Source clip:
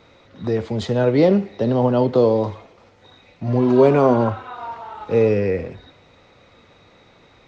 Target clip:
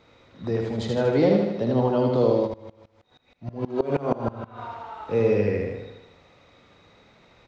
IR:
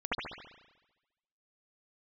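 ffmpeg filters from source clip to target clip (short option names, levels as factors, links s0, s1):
-filter_complex "[0:a]aecho=1:1:78|156|234|312|390|468|546|624:0.708|0.404|0.23|0.131|0.0747|0.0426|0.0243|0.0138,asplit=3[s0][s1][s2];[s0]afade=t=out:st=2.46:d=0.02[s3];[s1]aeval=exprs='val(0)*pow(10,-23*if(lt(mod(-6.3*n/s,1),2*abs(-6.3)/1000),1-mod(-6.3*n/s,1)/(2*abs(-6.3)/1000),(mod(-6.3*n/s,1)-2*abs(-6.3)/1000)/(1-2*abs(-6.3)/1000))/20)':c=same,afade=t=in:st=2.46:d=0.02,afade=t=out:st=4.59:d=0.02[s4];[s2]afade=t=in:st=4.59:d=0.02[s5];[s3][s4][s5]amix=inputs=3:normalize=0,volume=0.501"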